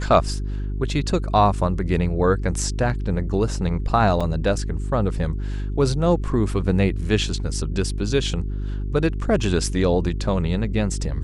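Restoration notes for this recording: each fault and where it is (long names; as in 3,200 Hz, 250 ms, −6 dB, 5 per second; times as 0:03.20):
mains hum 50 Hz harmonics 8 −26 dBFS
0:04.20–0:04.21: drop-out 5.6 ms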